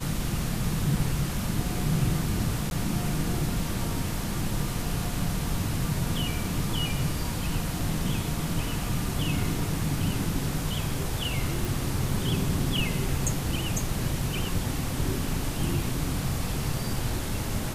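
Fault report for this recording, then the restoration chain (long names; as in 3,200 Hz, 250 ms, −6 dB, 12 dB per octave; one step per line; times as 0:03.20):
0:02.70–0:02.71: drop-out 11 ms
0:11.65: click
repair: click removal
repair the gap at 0:02.70, 11 ms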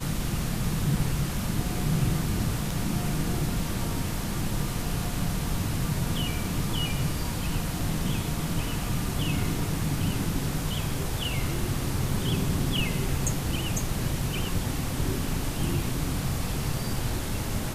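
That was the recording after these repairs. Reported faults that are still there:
none of them is left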